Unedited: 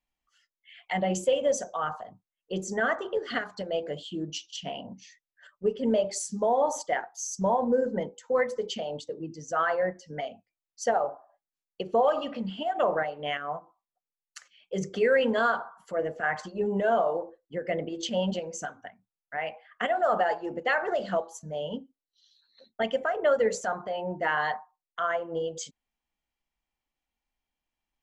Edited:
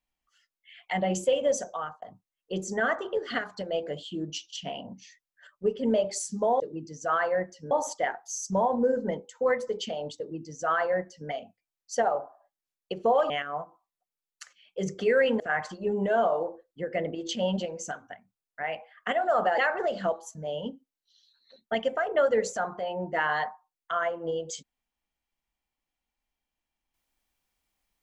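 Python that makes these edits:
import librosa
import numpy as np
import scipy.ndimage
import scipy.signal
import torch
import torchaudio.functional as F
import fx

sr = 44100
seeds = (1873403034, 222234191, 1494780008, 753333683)

y = fx.edit(x, sr, fx.fade_out_span(start_s=1.71, length_s=0.31),
    fx.duplicate(start_s=9.07, length_s=1.11, to_s=6.6),
    fx.cut(start_s=12.19, length_s=1.06),
    fx.cut(start_s=15.35, length_s=0.79),
    fx.cut(start_s=20.32, length_s=0.34), tone=tone)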